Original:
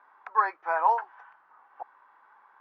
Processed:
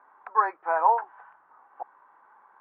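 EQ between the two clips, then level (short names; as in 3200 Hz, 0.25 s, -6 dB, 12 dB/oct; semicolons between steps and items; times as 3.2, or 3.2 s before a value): LPF 1000 Hz 6 dB/oct; air absorption 170 m; +5.5 dB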